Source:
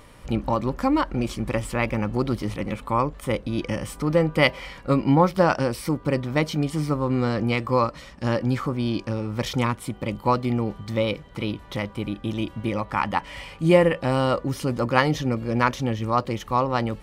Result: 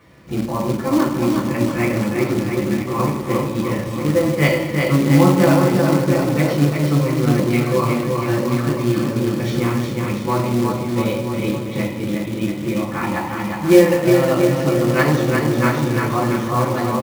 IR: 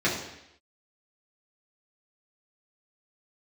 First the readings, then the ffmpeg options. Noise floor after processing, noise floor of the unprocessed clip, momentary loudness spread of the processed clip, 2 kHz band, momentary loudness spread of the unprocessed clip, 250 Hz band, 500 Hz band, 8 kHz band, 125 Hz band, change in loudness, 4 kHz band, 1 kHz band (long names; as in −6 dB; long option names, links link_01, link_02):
−26 dBFS, −45 dBFS, 9 LU, +4.5 dB, 10 LU, +7.5 dB, +6.0 dB, +9.5 dB, +7.0 dB, +6.0 dB, +2.5 dB, +2.0 dB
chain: -filter_complex "[0:a]aecho=1:1:360|684|975.6|1238|1474:0.631|0.398|0.251|0.158|0.1[link_01];[1:a]atrim=start_sample=2205,afade=type=out:start_time=0.41:duration=0.01,atrim=end_sample=18522[link_02];[link_01][link_02]afir=irnorm=-1:irlink=0,acrusher=bits=4:mode=log:mix=0:aa=0.000001,volume=-12.5dB"